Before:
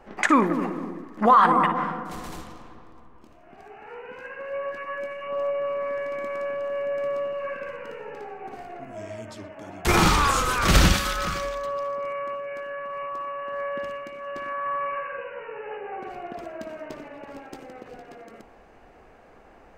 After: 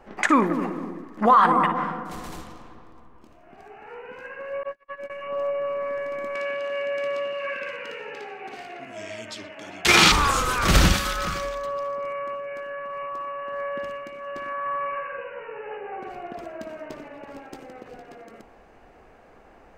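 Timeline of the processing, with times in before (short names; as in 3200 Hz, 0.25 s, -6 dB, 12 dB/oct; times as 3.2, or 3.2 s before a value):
4.63–5.1 gate -32 dBFS, range -41 dB
6.35–10.12 weighting filter D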